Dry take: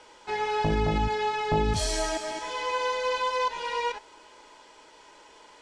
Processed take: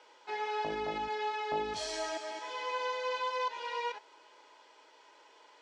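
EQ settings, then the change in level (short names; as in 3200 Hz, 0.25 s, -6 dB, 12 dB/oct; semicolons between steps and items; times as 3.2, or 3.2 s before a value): three-band isolator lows -23 dB, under 290 Hz, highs -17 dB, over 6800 Hz; -6.5 dB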